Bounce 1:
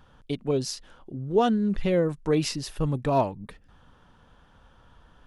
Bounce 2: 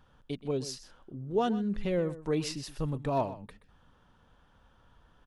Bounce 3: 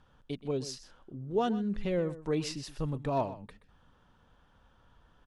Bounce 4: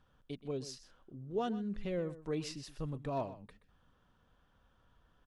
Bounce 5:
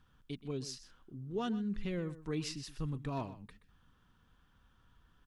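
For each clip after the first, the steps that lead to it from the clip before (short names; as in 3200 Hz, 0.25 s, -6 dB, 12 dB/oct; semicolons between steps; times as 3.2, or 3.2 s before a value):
echo 0.126 s -15 dB; gain -6.5 dB
LPF 10000 Hz 12 dB/oct; gain -1 dB
notch 880 Hz, Q 12; gain -6 dB
bell 590 Hz -11 dB 0.91 oct; gain +3 dB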